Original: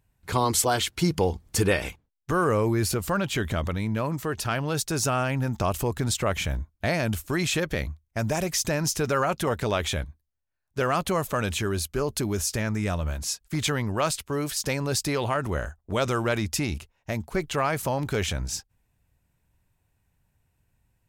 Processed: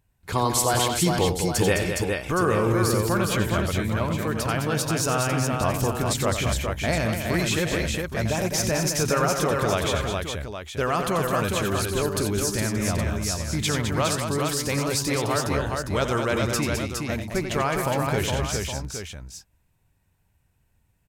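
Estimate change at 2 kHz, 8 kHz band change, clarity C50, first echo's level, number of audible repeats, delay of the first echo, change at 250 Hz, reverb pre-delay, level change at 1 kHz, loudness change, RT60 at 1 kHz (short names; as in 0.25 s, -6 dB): +2.5 dB, +2.5 dB, none, -8.5 dB, 4, 89 ms, +2.5 dB, none, +2.5 dB, +2.5 dB, none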